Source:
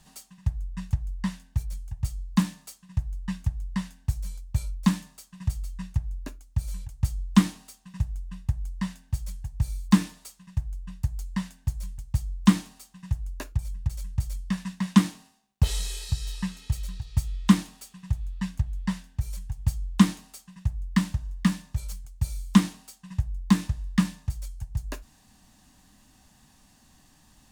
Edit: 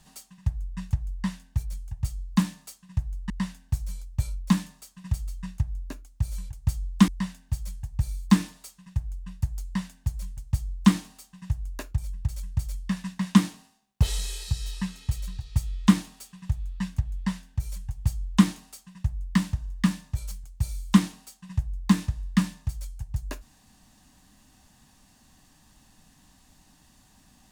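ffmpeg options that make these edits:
-filter_complex "[0:a]asplit=3[a][b][c];[a]atrim=end=3.302[d];[b]atrim=start=3.658:end=7.442[e];[c]atrim=start=8.688[f];[d][e]acrossfade=d=0.004:c1=hsin:c2=hsin[g];[g][f]acrossfade=d=0.004:c1=hsin:c2=hsin"

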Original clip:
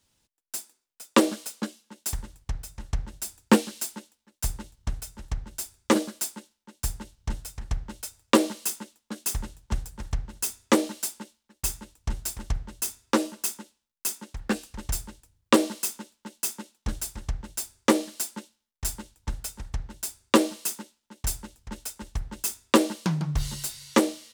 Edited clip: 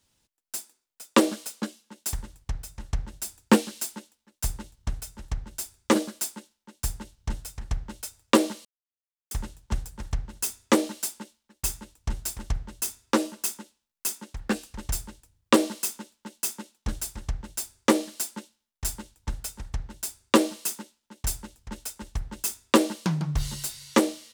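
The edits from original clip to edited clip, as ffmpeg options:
-filter_complex "[0:a]asplit=3[a][b][c];[a]atrim=end=8.65,asetpts=PTS-STARTPTS,afade=t=out:st=8.646:d=0.004:c=hsin[d];[b]atrim=start=8.65:end=9.31,asetpts=PTS-STARTPTS,volume=0[e];[c]atrim=start=9.31,asetpts=PTS-STARTPTS,afade=t=in:d=0.004:c=hsin[f];[d][e][f]concat=n=3:v=0:a=1"

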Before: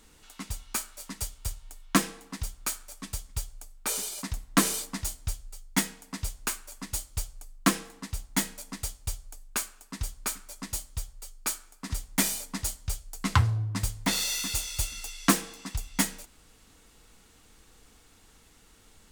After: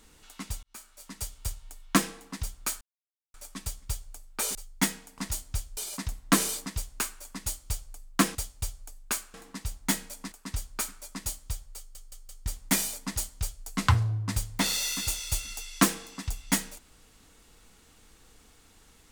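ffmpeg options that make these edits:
-filter_complex "[0:a]asplit=14[a][b][c][d][e][f][g][h][i][j][k][l][m][n];[a]atrim=end=0.63,asetpts=PTS-STARTPTS,afade=t=out:st=0.626:d=0.004:c=hsin[o];[b]atrim=start=0.63:end=2.81,asetpts=PTS-STARTPTS,afade=t=in:d=0.76,afade=t=out:st=2.176:d=0.004:c=hsin,apad=pad_dur=0.53[p];[c]atrim=start=2.81:end=4.022,asetpts=PTS-STARTPTS,afade=t=in:d=0.004:c=hsin[q];[d]atrim=start=5.498:end=6.132[r];[e]atrim=start=4.908:end=5.502[s];[f]atrim=start=4.018:end=4.912[t];[g]atrim=start=6.128:end=7.822[u];[h]atrim=start=8.798:end=9.792[v];[i]atrim=start=7.818:end=8.802[w];[j]atrim=start=9.788:end=11.422[x];[k]atrim=start=11.248:end=11.422[y];[l]atrim=start=11.248:end=11.422[z];[m]atrim=start=11.248:end=11.422[aa];[n]atrim=start=11.928[ab];[o][p][q]concat=n=3:v=0:a=1[ac];[ac][r]acrossfade=d=0.004:c1=hsin:c2=hsin[ad];[ad][s]acrossfade=d=0.004:c1=hsin:c2=hsin[ae];[ae][t]acrossfade=d=0.004:c1=hsin:c2=hsin[af];[af][u]acrossfade=d=0.004:c1=hsin:c2=hsin[ag];[ag][v]acrossfade=d=0.004:c1=hsin:c2=hsin[ah];[ah][w]acrossfade=d=0.004:c1=hsin:c2=hsin[ai];[ai][x]acrossfade=d=0.004:c1=hsin:c2=hsin[aj];[aj][y]acrossfade=d=0.004:c1=hsin:c2=hsin[ak];[ak][z]acrossfade=d=0.004:c1=hsin:c2=hsin[al];[al][aa]acrossfade=d=0.004:c1=hsin:c2=hsin[am];[am][ab]acrossfade=d=0.004:c1=hsin:c2=hsin"

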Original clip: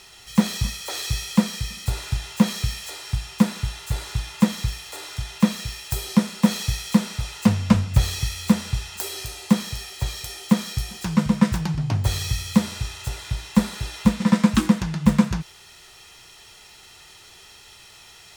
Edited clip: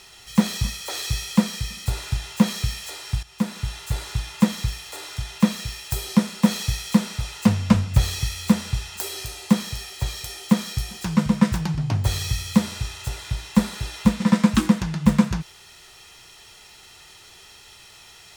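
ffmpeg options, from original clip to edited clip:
-filter_complex "[0:a]asplit=2[a][b];[a]atrim=end=3.23,asetpts=PTS-STARTPTS,afade=t=out:st=3.226:d=0.004:c=hsin:silence=0.211349[c];[b]atrim=start=3.23,asetpts=PTS-STARTPTS,afade=t=in:d=0.51:silence=0.211349[d];[c][d]concat=n=2:v=0:a=1"

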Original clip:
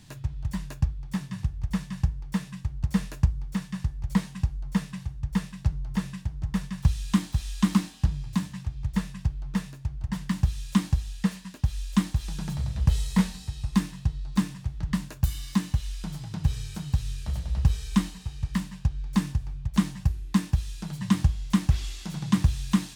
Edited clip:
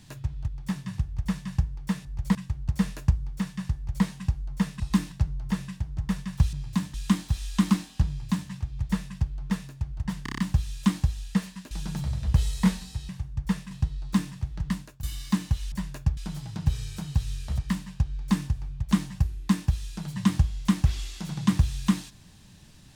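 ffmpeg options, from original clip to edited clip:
-filter_complex "[0:a]asplit=20[a][b][c][d][e][f][g][h][i][j][k][l][m][n][o][p][q][r][s][t];[a]atrim=end=0.482[u];[b]atrim=start=0.928:end=2.502[v];[c]atrim=start=3.898:end=4.202[w];[d]atrim=start=2.498:end=4.952[x];[e]atrim=start=13.618:end=13.942[y];[f]atrim=start=5.568:end=6.982[z];[g]atrim=start=8.128:end=8.542[aa];[h]atrim=start=6.978:end=10.302[ab];[i]atrim=start=10.268:end=10.302[ac];[j]atrim=start=10.268:end=10.302[ad];[k]atrim=start=10.268:end=10.302[ae];[l]atrim=start=10.268:end=10.302[af];[m]atrim=start=10.268:end=11.602[ag];[n]atrim=start=12.238:end=13.622[ah];[o]atrim=start=4.948:end=5.572[ai];[p]atrim=start=13.938:end=15.26,asetpts=PTS-STARTPTS,afade=t=out:st=0.792:d=0.53:c=qsin:silence=0.0944061[aj];[q]atrim=start=15.26:end=15.952,asetpts=PTS-STARTPTS,afade=t=in:d=0.004:c=hsin:silence=0.0944061[ak];[r]atrim=start=0.478:end=0.932[al];[s]atrim=start=15.948:end=17.362[am];[t]atrim=start=18.428[an];[u][v]acrossfade=d=0.004:c1=hsin:c2=hsin[ao];[ao][w]acrossfade=d=0.004:c1=hsin:c2=hsin[ap];[ap][x]acrossfade=d=0.004:c1=hsin:c2=hsin[aq];[aq][y]acrossfade=d=0.004:c1=hsin:c2=hsin[ar];[ar][z]acrossfade=d=0.004:c1=hsin:c2=hsin[as];[as][aa]acrossfade=d=0.004:c1=hsin:c2=hsin[at];[at][ab]acrossfade=d=0.004:c1=hsin:c2=hsin[au];[au][ac]acrossfade=d=0.004:c1=hsin:c2=hsin[av];[av][ad]acrossfade=d=0.004:c1=hsin:c2=hsin[aw];[aw][ae]acrossfade=d=0.004:c1=hsin:c2=hsin[ax];[ax][af]acrossfade=d=0.004:c1=hsin:c2=hsin[ay];[ay][ag]acrossfade=d=0.004:c1=hsin:c2=hsin[az];[az][ah]acrossfade=d=0.004:c1=hsin:c2=hsin[ba];[ba][ai]acrossfade=d=0.004:c1=hsin:c2=hsin[bb];[aj][ak]concat=n=2:v=0:a=1[bc];[bb][bc]acrossfade=d=0.004:c1=hsin:c2=hsin[bd];[bd][al]acrossfade=d=0.004:c1=hsin:c2=hsin[be];[be][am]acrossfade=d=0.004:c1=hsin:c2=hsin[bf];[bf][an]acrossfade=d=0.004:c1=hsin:c2=hsin"

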